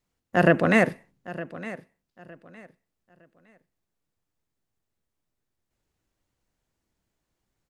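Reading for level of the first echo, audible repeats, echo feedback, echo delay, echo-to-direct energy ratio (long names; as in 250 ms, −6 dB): −16.5 dB, 2, 26%, 911 ms, −16.0 dB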